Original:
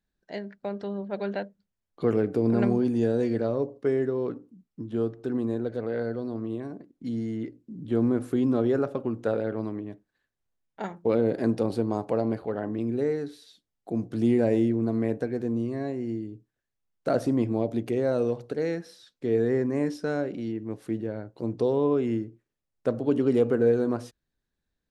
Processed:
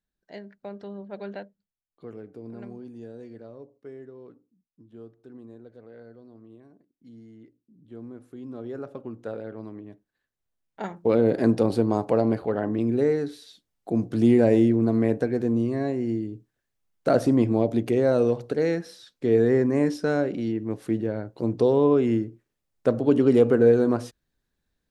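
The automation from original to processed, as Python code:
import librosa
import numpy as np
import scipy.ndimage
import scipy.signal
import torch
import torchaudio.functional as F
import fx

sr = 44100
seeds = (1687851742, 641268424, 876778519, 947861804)

y = fx.gain(x, sr, db=fx.line((1.36, -5.5), (2.07, -17.0), (8.32, -17.0), (8.96, -7.5), (9.58, -7.5), (11.36, 4.5)))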